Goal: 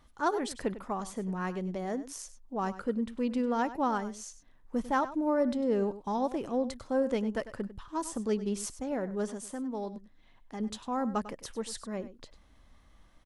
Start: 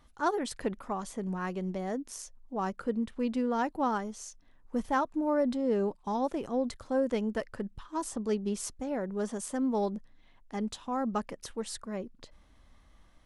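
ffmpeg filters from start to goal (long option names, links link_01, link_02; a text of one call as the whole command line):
ffmpeg -i in.wav -filter_complex "[0:a]asettb=1/sr,asplit=3[link_01][link_02][link_03];[link_01]atrim=end=9.294[link_04];[link_02]atrim=start=9.29:end=10.6,asetpts=PTS-STARTPTS,afade=type=in:duration=0.004:curve=qsin,afade=type=out:start_time=1.306:duration=0.004:curve=qsin,acompressor=threshold=-45dB:ratio=1.5[link_05];[link_03]atrim=start=10.596[link_06];[link_04][link_05]acrossfade=duration=0.004:curve1=hsin:curve2=qsin[link_07];[link_07][link_06]acrossfade=duration=0.004:curve1=qsin:curve2=hsin,asplit=2[link_08][link_09];[link_09]aecho=0:1:99:0.188[link_10];[link_08][link_10]amix=inputs=2:normalize=0" out.wav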